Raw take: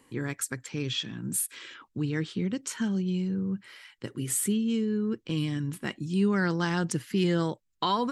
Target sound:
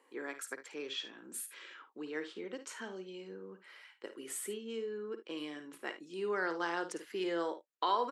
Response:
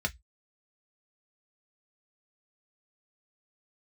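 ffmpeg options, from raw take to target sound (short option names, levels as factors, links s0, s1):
-af "highpass=f=390:w=0.5412,highpass=f=390:w=1.3066,highshelf=f=2900:g=-11.5,aecho=1:1:53|75:0.299|0.133,volume=0.75"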